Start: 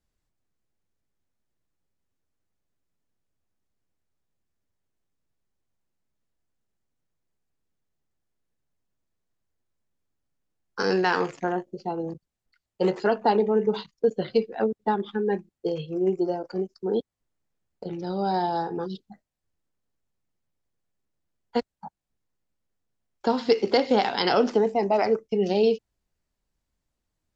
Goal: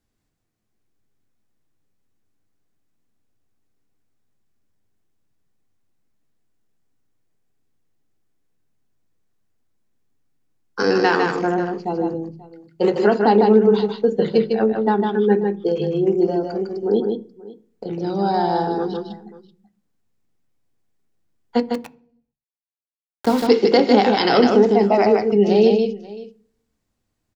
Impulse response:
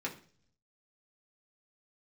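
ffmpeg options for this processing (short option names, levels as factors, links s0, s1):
-filter_complex "[0:a]aecho=1:1:153|536:0.596|0.1,asettb=1/sr,asplit=3[s0][s1][s2];[s0]atrim=end=21.744[s3];[s1]atrim=start=21.74:end=23.47,asetpts=PTS-STARTPTS,afade=t=in:d=0.004:c=qsin,afade=t=out:st=1.726:d=0.004:c=qsin,aeval=exprs='val(0)*gte(abs(val(0)),0.0266)':c=same[s4];[s2]atrim=start=23.466[s5];[s3][s4]acrossfade=d=0.004:c1=hsin:c2=qsin[s6];[s6][s5]acrossfade=d=0.004:c1=qsin:c2=hsin,asplit=2[s7][s8];[1:a]atrim=start_sample=2205,lowshelf=f=460:g=12[s9];[s8][s9]afir=irnorm=-1:irlink=0,volume=0.224[s10];[s7][s10]amix=inputs=2:normalize=0,volume=1.41"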